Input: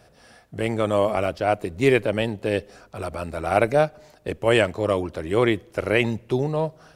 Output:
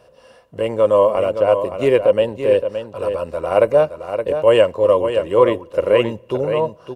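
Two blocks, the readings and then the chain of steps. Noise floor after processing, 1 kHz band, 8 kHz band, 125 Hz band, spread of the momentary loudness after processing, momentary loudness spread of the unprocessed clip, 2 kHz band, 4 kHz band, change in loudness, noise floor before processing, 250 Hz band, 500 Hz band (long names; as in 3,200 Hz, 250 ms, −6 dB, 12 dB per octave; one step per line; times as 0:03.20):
−49 dBFS, +3.5 dB, can't be measured, −2.5 dB, 10 LU, 11 LU, −3.0 dB, +1.0 dB, +6.0 dB, −54 dBFS, −0.5 dB, +8.0 dB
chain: dynamic equaliser 3,900 Hz, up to −4 dB, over −42 dBFS, Q 0.86
hollow resonant body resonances 530/1,000/2,800 Hz, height 17 dB, ringing for 35 ms
on a send: single-tap delay 569 ms −8.5 dB
on the sum: level −3.5 dB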